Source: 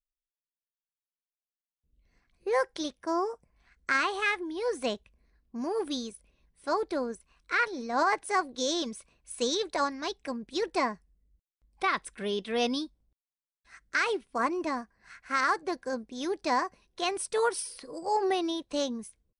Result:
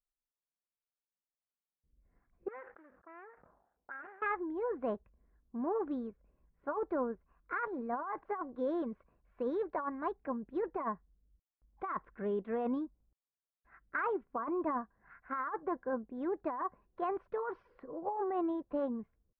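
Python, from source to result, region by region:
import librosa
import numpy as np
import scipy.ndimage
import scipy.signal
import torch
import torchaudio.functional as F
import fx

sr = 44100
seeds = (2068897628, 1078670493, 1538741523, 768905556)

y = fx.chain(x, sr, fx.median_filter(points=41),
    fx.auto_wah(base_hz=710.0, top_hz=1800.0, q=2.9, full_db=-34.0, direction='up'),
    fx.sustainer(db_per_s=63.0), at=(2.48, 4.22))
y = scipy.signal.sosfilt(scipy.signal.butter(4, 1500.0, 'lowpass', fs=sr, output='sos'), y)
y = fx.dynamic_eq(y, sr, hz=1100.0, q=2.5, threshold_db=-43.0, ratio=4.0, max_db=7)
y = fx.over_compress(y, sr, threshold_db=-29.0, ratio=-1.0)
y = y * librosa.db_to_amplitude(-5.0)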